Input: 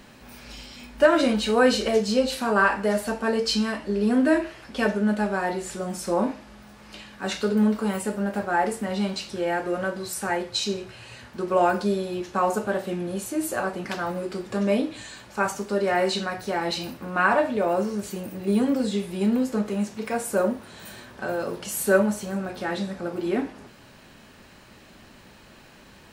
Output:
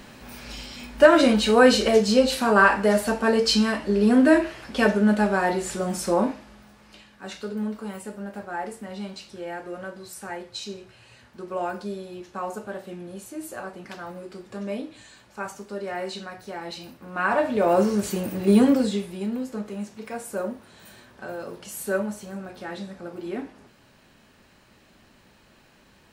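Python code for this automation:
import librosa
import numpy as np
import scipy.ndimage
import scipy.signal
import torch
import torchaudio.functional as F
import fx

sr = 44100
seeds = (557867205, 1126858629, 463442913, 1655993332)

y = fx.gain(x, sr, db=fx.line((6.02, 3.5), (7.11, -8.5), (17.0, -8.5), (17.38, -1.0), (17.82, 5.5), (18.67, 5.5), (19.26, -6.5)))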